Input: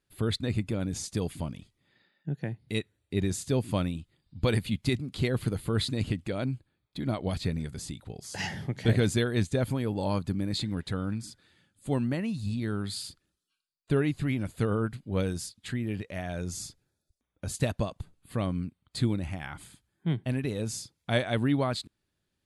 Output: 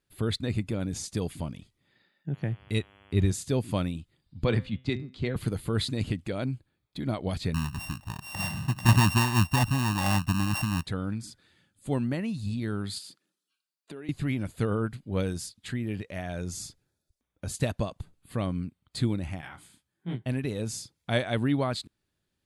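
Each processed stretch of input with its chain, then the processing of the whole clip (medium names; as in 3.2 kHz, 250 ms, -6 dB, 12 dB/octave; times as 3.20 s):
2.32–3.30 s: peaking EQ 69 Hz +13 dB 1.2 oct + mains buzz 100 Hz, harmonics 34, -58 dBFS -2 dB/octave
4.44–5.36 s: distance through air 130 m + de-hum 128.6 Hz, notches 30 + three bands expanded up and down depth 100%
7.54–10.86 s: sorted samples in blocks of 32 samples + comb 1.1 ms, depth 98%
12.98–14.09 s: high-pass 180 Hz 24 dB/octave + compression 4:1, threshold -41 dBFS
19.41–20.26 s: high-pass 120 Hz 6 dB/octave + detune thickener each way 56 cents
whole clip: none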